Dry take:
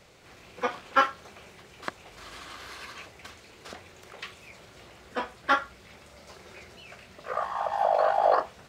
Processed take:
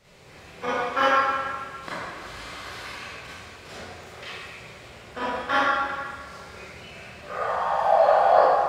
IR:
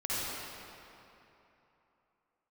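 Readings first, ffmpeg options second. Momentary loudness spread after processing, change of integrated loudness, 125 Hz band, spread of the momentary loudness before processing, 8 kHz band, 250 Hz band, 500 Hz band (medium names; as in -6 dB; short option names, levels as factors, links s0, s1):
22 LU, +4.0 dB, +8.0 dB, 23 LU, +4.0 dB, +5.5 dB, +6.0 dB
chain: -filter_complex "[1:a]atrim=start_sample=2205,asetrate=79380,aresample=44100[s0];[0:a][s0]afir=irnorm=-1:irlink=0,volume=1.41"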